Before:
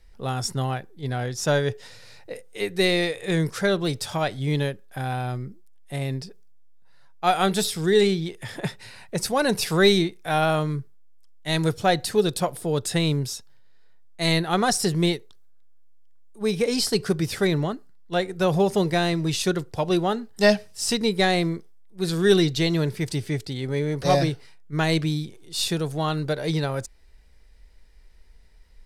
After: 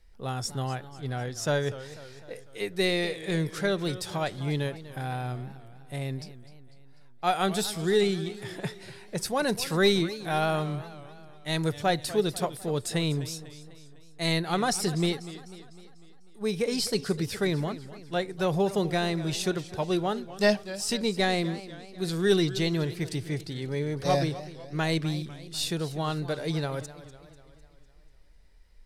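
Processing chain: modulated delay 249 ms, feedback 54%, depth 153 cents, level -15.5 dB; trim -5 dB

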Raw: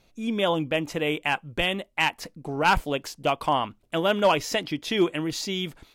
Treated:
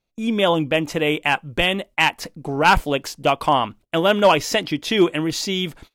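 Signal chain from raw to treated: gate -47 dBFS, range -23 dB; trim +6 dB

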